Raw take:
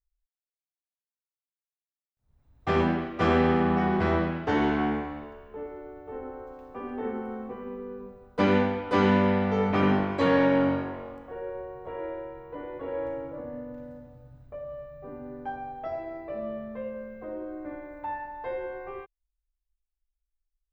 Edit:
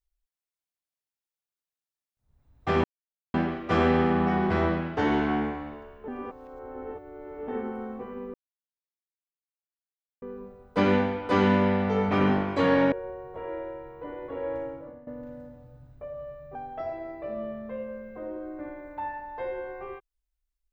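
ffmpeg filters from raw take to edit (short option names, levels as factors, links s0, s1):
-filter_complex "[0:a]asplit=8[s0][s1][s2][s3][s4][s5][s6][s7];[s0]atrim=end=2.84,asetpts=PTS-STARTPTS,afade=t=out:st=2.836:d=0.004:c=hsin,apad=pad_dur=0.5[s8];[s1]atrim=start=2.84:end=5.582,asetpts=PTS-STARTPTS,afade=t=in:d=0.004:c=hsin[s9];[s2]atrim=start=5.578:end=6.982,asetpts=PTS-STARTPTS,areverse[s10];[s3]atrim=start=6.978:end=7.84,asetpts=PTS-STARTPTS,afade=t=out:st=0.858:d=0.004:c=hsin,apad=pad_dur=1.88[s11];[s4]atrim=start=7.84:end=10.542,asetpts=PTS-STARTPTS,afade=t=in:d=0.004:c=hsin[s12];[s5]atrim=start=11.428:end=13.58,asetpts=PTS-STARTPTS,afade=t=out:st=1.722:d=0.43:silence=0.158489[s13];[s6]atrim=start=13.58:end=15.062,asetpts=PTS-STARTPTS,afade=t=in:d=0.004:c=hsin:silence=0.158489[s14];[s7]atrim=start=15.608[s15];[s8][s9]concat=n=2:v=0:a=1[s16];[s16][s10]acrossfade=d=0.004:c1=hsin:c2=hsin[s17];[s11][s12]concat=n=2:v=0:a=1[s18];[s17][s18]acrossfade=d=0.004:c1=hsin:c2=hsin[s19];[s13][s14]concat=n=2:v=0:a=1[s20];[s19][s20]acrossfade=d=0.004:c1=hsin:c2=hsin[s21];[s21][s15]acrossfade=d=0.004:c1=hsin:c2=hsin"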